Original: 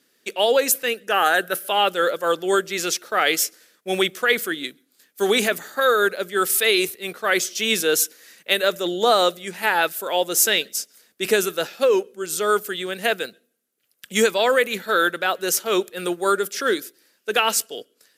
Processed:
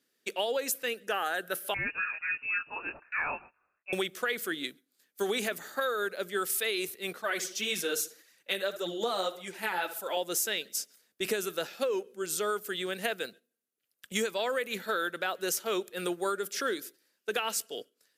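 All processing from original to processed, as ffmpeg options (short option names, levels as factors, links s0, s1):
-filter_complex "[0:a]asettb=1/sr,asplit=3[s0][s1][s2];[s0]atrim=end=1.744[s3];[s1]atrim=start=1.74:end=3.93,asetpts=PTS-STARTPTS,afade=t=in:d=0.004:c=qsin,afade=t=out:st=2.186:d=0.004:c=qsin,highpass=f=510:p=1,flanger=delay=20:depth=5:speed=1.1,lowpass=f=2600:t=q:w=0.5098,lowpass=f=2600:t=q:w=0.6013,lowpass=f=2600:t=q:w=0.9,lowpass=f=2600:t=q:w=2.563,afreqshift=-3000[s4];[s2]atrim=start=3.926[s5];[s3][s4]acrossfade=d=0.004:c1=hsin:c2=qsin[s6];[s6][s5]acrossfade=d=0.004:c1=qsin:c2=hsin,asettb=1/sr,asplit=3[s7][s8][s9];[s7]atrim=end=7.224[s10];[s8]atrim=start=7.22:end=10.17,asetpts=PTS-STARTPTS,afade=t=in:d=0.004:c=qsin,afade=t=out:st=2.946:d=0.004:c=qsin,asplit=2[s11][s12];[s12]adelay=66,lowpass=f=3200:p=1,volume=0.2,asplit=2[s13][s14];[s14]adelay=66,lowpass=f=3200:p=1,volume=0.37,asplit=2[s15][s16];[s16]adelay=66,lowpass=f=3200:p=1,volume=0.37,asplit=2[s17][s18];[s18]adelay=66,lowpass=f=3200:p=1,volume=0.37[s19];[s11][s13][s15][s17][s19]amix=inputs=5:normalize=0,atrim=end_sample=130095,flanger=delay=0.8:depth=5.4:regen=0:speed=1.8:shape=triangular[s20];[s9]atrim=start=10.166[s21];[s10][s20]acrossfade=d=0.004:c1=hsin:c2=qsin[s22];[s22][s21]acrossfade=d=0.004:c1=qsin:c2=hsin,agate=range=0.447:threshold=0.00708:ratio=16:detection=peak,acompressor=threshold=0.0794:ratio=6,volume=0.531"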